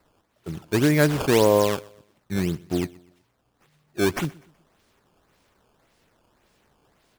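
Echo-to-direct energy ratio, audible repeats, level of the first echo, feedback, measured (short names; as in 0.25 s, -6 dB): -22.5 dB, 2, -23.0 dB, 39%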